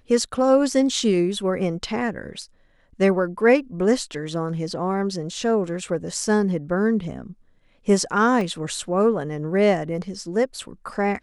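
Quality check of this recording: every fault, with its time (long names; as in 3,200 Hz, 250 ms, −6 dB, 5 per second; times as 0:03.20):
0:08.41: drop-out 2.3 ms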